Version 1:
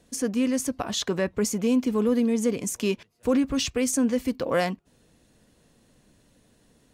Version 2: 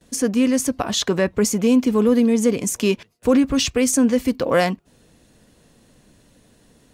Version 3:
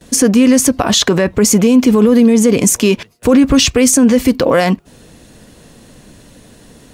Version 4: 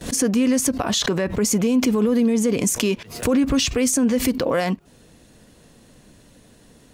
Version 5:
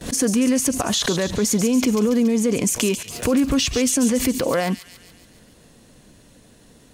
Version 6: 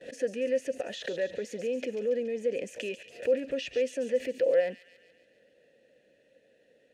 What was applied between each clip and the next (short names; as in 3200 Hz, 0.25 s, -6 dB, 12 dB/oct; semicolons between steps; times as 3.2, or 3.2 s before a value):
gate with hold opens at -53 dBFS; gain +6.5 dB
maximiser +14 dB; gain -1 dB
backwards sustainer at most 120 dB/s; gain -9.5 dB
thin delay 0.141 s, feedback 59%, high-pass 3200 Hz, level -6.5 dB
vowel filter e